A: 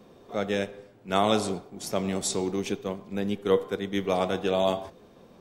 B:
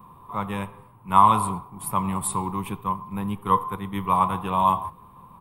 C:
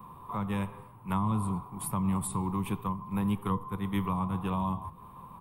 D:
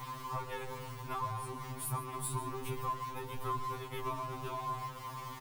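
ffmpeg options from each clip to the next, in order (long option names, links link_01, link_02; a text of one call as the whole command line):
ffmpeg -i in.wav -af "firequalizer=gain_entry='entry(150,0);entry(230,-11);entry(420,-18);entry(670,-16);entry(1000,13);entry(1500,-13);entry(2500,-10);entry(6000,-30);entry(9400,2)':delay=0.05:min_phase=1,volume=8.5dB" out.wav
ffmpeg -i in.wav -filter_complex "[0:a]acrossover=split=300[link_01][link_02];[link_02]acompressor=threshold=-34dB:ratio=6[link_03];[link_01][link_03]amix=inputs=2:normalize=0" out.wav
ffmpeg -i in.wav -af "aeval=exprs='val(0)+0.5*0.015*sgn(val(0))':channel_layout=same,aecho=1:1:143:0.168,afftfilt=real='re*2.45*eq(mod(b,6),0)':imag='im*2.45*eq(mod(b,6),0)':win_size=2048:overlap=0.75,volume=-3dB" out.wav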